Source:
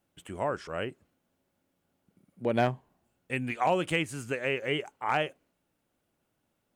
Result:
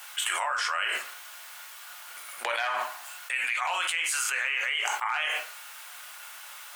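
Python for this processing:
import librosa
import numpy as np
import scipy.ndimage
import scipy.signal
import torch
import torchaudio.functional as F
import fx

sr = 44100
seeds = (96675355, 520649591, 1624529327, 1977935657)

y = scipy.signal.sosfilt(scipy.signal.butter(4, 1100.0, 'highpass', fs=sr, output='sos'), x)
y = fx.room_shoebox(y, sr, seeds[0], volume_m3=120.0, walls='furnished', distance_m=0.92)
y = fx.env_flatten(y, sr, amount_pct=100)
y = F.gain(torch.from_numpy(y), -2.5).numpy()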